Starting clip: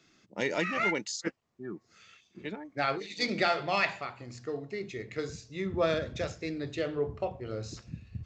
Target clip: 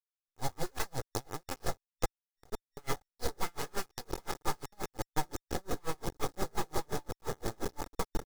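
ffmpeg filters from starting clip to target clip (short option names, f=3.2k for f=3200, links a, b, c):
-af "tiltshelf=f=780:g=8.5,aecho=1:1:772:0.531,acrusher=bits=4:mix=0:aa=0.000001,afftfilt=real='re*(1-between(b*sr/4096,1800,3700))':imag='im*(1-between(b*sr/4096,1800,3700))':win_size=4096:overlap=0.75,aeval=exprs='abs(val(0))':c=same,acompressor=threshold=-30dB:ratio=12,aecho=1:1:2.4:0.43,aeval=exprs='val(0)*pow(10,-37*(0.5-0.5*cos(2*PI*5.7*n/s))/20)':c=same,volume=5.5dB"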